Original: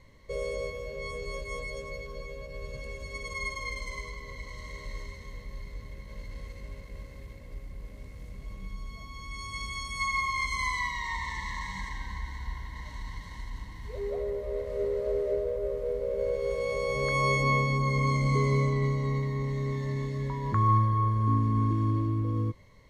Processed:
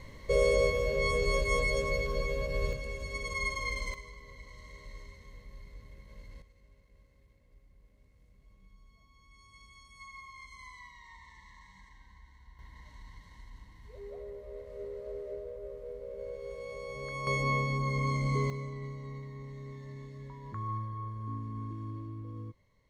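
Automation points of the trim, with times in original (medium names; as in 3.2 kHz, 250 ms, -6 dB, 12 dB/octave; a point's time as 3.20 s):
+8 dB
from 2.73 s +1 dB
from 3.94 s -8.5 dB
from 6.42 s -19.5 dB
from 12.59 s -11.5 dB
from 17.27 s -4.5 dB
from 18.50 s -13.5 dB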